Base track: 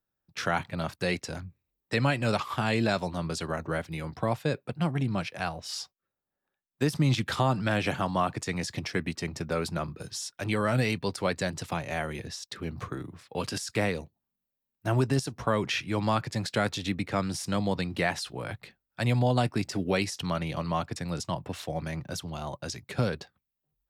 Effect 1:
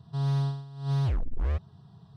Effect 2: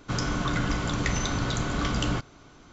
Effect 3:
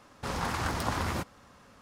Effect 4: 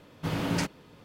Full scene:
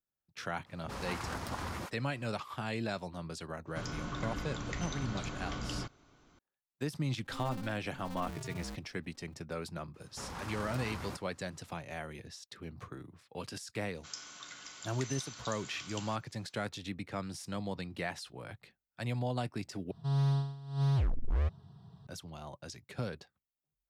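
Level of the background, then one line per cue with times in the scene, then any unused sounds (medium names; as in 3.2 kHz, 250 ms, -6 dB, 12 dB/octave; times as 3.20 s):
base track -10 dB
0.62 s: add 3 -8 dB + phase dispersion highs, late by 45 ms, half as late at 350 Hz
3.67 s: add 2 -12 dB
7.18 s: add 1 -17 dB + polarity switched at an audio rate 130 Hz
9.94 s: add 3 -9.5 dB + saturation -25.5 dBFS
13.95 s: add 2 -6 dB + differentiator
19.91 s: replace with 1 -2.5 dB
not used: 4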